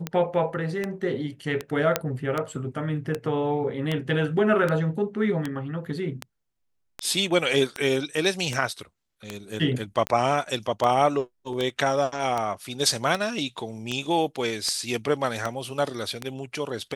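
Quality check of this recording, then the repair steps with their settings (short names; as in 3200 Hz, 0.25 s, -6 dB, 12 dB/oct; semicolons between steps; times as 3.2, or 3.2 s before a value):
tick 78 rpm -13 dBFS
1.96 pop -5 dBFS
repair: de-click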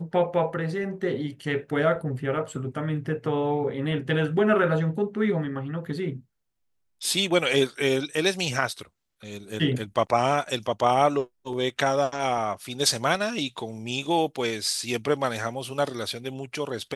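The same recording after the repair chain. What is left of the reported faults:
none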